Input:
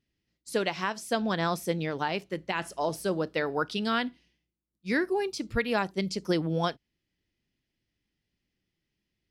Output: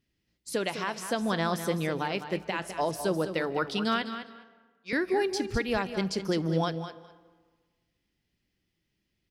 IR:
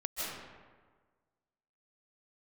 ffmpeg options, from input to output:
-filter_complex "[0:a]alimiter=limit=0.0944:level=0:latency=1:release=253,asettb=1/sr,asplit=3[s0][s1][s2];[s0]atrim=end=4.024[s3];[s1]atrim=start=4.02:end=4.93,asetpts=PTS-STARTPTS,afade=t=in:d=0.004:c=qsin,afade=t=out:st=0.906:d=0.004:c=qsin,highpass=560,lowpass=4900[s4];[s2]atrim=start=4.926[s5];[s3][s4]acrossfade=d=0.004:c1=hsin:c2=qsin[s6];[s6][s5]acrossfade=d=0.004:c1=qsin:c2=hsin,aecho=1:1:205|410:0.316|0.0538,asplit=2[s7][s8];[1:a]atrim=start_sample=2205[s9];[s8][s9]afir=irnorm=-1:irlink=0,volume=0.0944[s10];[s7][s10]amix=inputs=2:normalize=0,volume=1.26"

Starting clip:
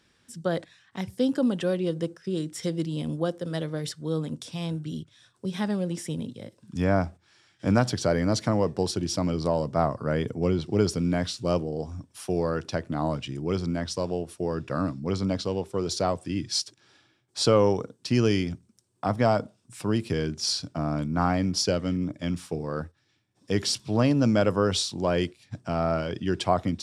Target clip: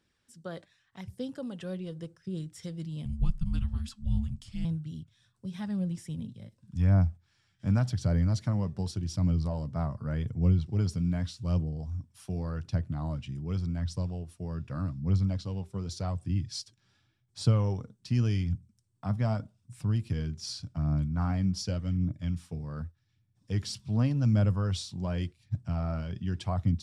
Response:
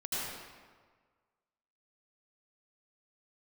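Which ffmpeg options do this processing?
-filter_complex "[0:a]asettb=1/sr,asplit=3[s0][s1][s2];[s0]atrim=end=3.054[s3];[s1]atrim=start=3.05:end=4.65,asetpts=PTS-STARTPTS,afade=t=in:d=0.004:c=qsin,afade=t=out:st=1.596:d=0.004:c=qsin,afreqshift=-370[s4];[s2]atrim=start=4.646[s5];[s3][s4]acrossfade=d=0.004:c1=hsin:c2=qsin[s6];[s6][s5]acrossfade=d=0.004:c1=qsin:c2=hsin,flanger=delay=0.1:depth=5.1:regen=66:speed=0.86:shape=sinusoidal,asubboost=boost=10:cutoff=120,volume=0.447"

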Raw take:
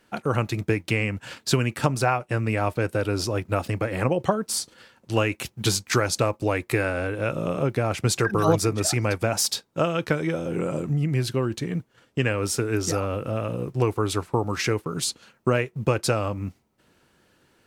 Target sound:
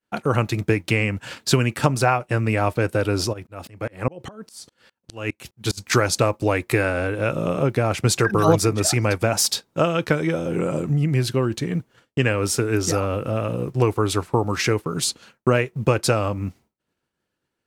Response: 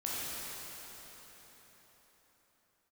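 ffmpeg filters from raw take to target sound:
-filter_complex "[0:a]agate=range=0.0224:threshold=0.00398:ratio=3:detection=peak,asplit=3[s0][s1][s2];[s0]afade=t=out:st=3.32:d=0.02[s3];[s1]aeval=exprs='val(0)*pow(10,-30*if(lt(mod(-4.9*n/s,1),2*abs(-4.9)/1000),1-mod(-4.9*n/s,1)/(2*abs(-4.9)/1000),(mod(-4.9*n/s,1)-2*abs(-4.9)/1000)/(1-2*abs(-4.9)/1000))/20)':c=same,afade=t=in:st=3.32:d=0.02,afade=t=out:st=5.77:d=0.02[s4];[s2]afade=t=in:st=5.77:d=0.02[s5];[s3][s4][s5]amix=inputs=3:normalize=0,volume=1.5"

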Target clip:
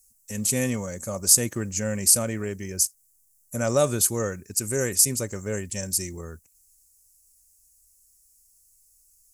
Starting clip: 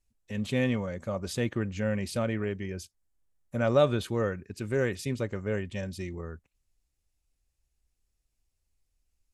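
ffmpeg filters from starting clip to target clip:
-af "aexciter=amount=14.9:drive=7.2:freq=5400,volume=1.12"

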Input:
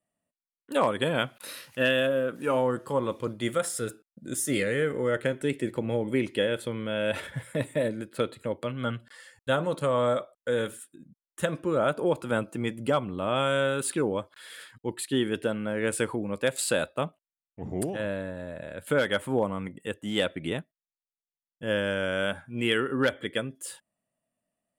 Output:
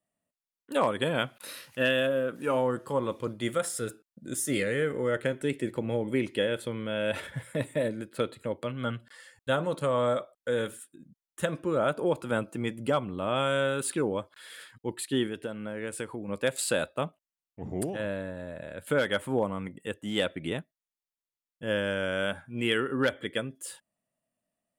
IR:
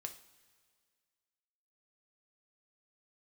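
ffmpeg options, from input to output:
-filter_complex "[0:a]asettb=1/sr,asplit=3[s0][s1][s2];[s0]atrim=end=15.264[s3];[s1]atrim=start=15.26:end=16.28,asetpts=PTS-STARTPTS,afade=t=in:d=0.004:c=qsin,afade=t=out:st=1.016:d=0.004:c=qsin,acompressor=threshold=0.0224:ratio=2.5[s4];[s2]atrim=start=16.276[s5];[s3][s4]acrossfade=d=0.004:c1=hsin:c2=qsin[s6];[s6][s5]acrossfade=d=0.004:c1=qsin:c2=hsin,volume=0.841"

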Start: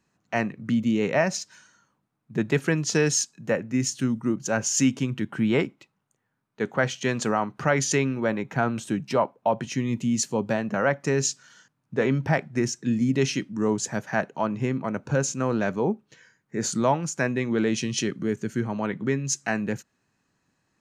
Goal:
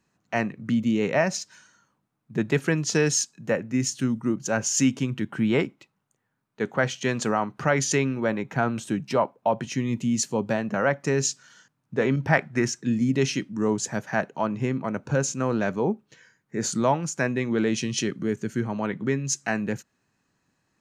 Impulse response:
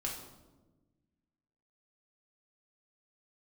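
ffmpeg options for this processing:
-filter_complex "[0:a]asettb=1/sr,asplit=3[s0][s1][s2];[s0]atrim=end=12.164[s3];[s1]atrim=start=12.16:end=12.81,asetpts=PTS-STARTPTS,afade=t=in:d=0.004:c=qsin,afade=t=out:st=0.646:d=0.004:c=qsin,adynamicequalizer=threshold=0.0126:dfrequency=1500:dqfactor=0.76:tfrequency=1500:tqfactor=0.76:attack=5:release=100:ratio=0.375:range=3.5:mode=boostabove:tftype=bell[s4];[s2]atrim=start=12.806[s5];[s3][s4]acrossfade=d=0.004:c1=hsin:c2=qsin[s6];[s6][s5]acrossfade=d=0.004:c1=qsin:c2=hsin"

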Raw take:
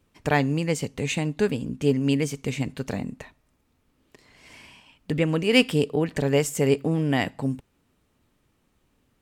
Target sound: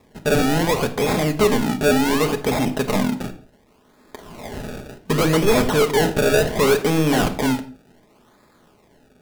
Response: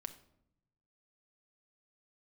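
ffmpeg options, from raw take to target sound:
-filter_complex "[0:a]asplit=2[s0][s1];[s1]highpass=f=720:p=1,volume=35.5,asoftclip=type=tanh:threshold=0.596[s2];[s0][s2]amix=inputs=2:normalize=0,lowpass=f=2900:p=1,volume=0.501,acrusher=samples=29:mix=1:aa=0.000001:lfo=1:lforange=29:lforate=0.68[s3];[1:a]atrim=start_sample=2205,afade=t=out:st=0.26:d=0.01,atrim=end_sample=11907,asetrate=48510,aresample=44100[s4];[s3][s4]afir=irnorm=-1:irlink=0"

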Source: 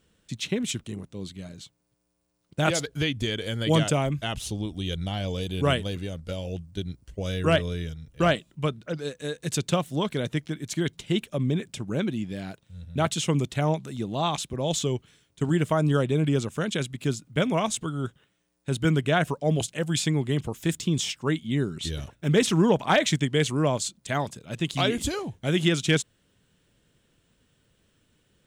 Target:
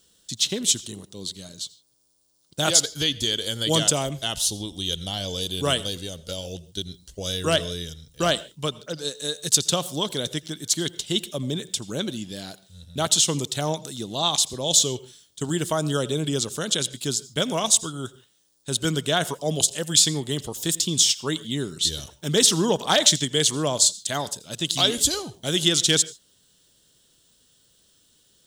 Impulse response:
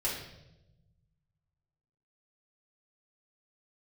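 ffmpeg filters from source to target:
-filter_complex "[0:a]bass=f=250:g=-5,treble=f=4000:g=-14,aexciter=amount=12.4:drive=7.2:freq=3600,asplit=2[s0][s1];[1:a]atrim=start_sample=2205,atrim=end_sample=3528,adelay=80[s2];[s1][s2]afir=irnorm=-1:irlink=0,volume=0.0668[s3];[s0][s3]amix=inputs=2:normalize=0"

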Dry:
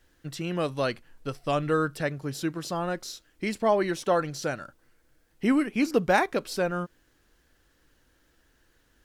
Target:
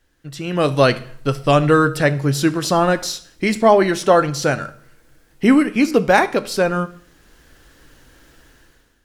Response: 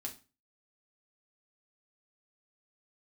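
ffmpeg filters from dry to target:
-filter_complex "[0:a]dynaudnorm=f=160:g=7:m=6.31,asplit=2[s0][s1];[1:a]atrim=start_sample=2205,asetrate=23373,aresample=44100[s2];[s1][s2]afir=irnorm=-1:irlink=0,volume=0.299[s3];[s0][s3]amix=inputs=2:normalize=0,volume=0.794"

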